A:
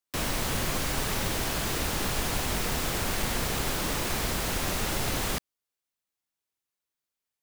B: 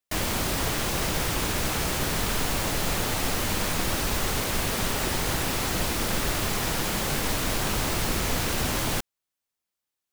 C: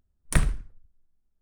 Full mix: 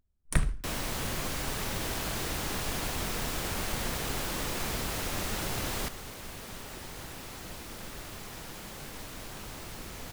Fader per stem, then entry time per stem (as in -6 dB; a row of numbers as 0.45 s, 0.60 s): -4.5 dB, -16.0 dB, -4.5 dB; 0.50 s, 1.70 s, 0.00 s